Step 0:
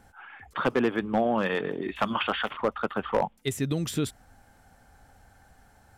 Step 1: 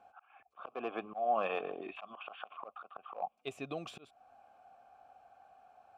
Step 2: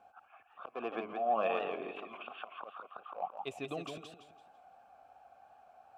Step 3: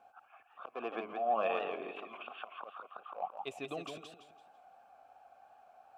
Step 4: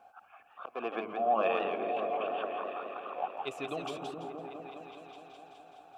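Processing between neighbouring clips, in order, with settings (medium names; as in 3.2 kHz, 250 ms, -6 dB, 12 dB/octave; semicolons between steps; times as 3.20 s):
vowel filter a; slow attack 318 ms; trim +7 dB
modulated delay 167 ms, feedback 33%, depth 148 cents, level -5.5 dB
bass shelf 180 Hz -7.5 dB
delay with an opening low-pass 209 ms, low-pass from 200 Hz, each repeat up 1 oct, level 0 dB; trim +3.5 dB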